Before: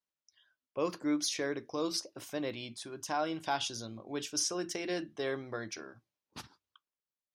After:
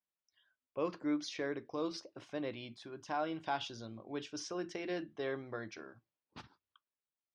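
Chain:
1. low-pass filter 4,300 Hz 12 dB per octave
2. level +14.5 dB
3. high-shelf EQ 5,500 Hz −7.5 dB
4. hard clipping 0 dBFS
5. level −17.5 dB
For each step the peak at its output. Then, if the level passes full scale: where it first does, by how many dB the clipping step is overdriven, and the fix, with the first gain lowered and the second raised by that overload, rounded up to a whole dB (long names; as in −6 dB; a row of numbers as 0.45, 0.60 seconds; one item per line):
−19.5, −5.0, −5.5, −5.5, −23.0 dBFS
no step passes full scale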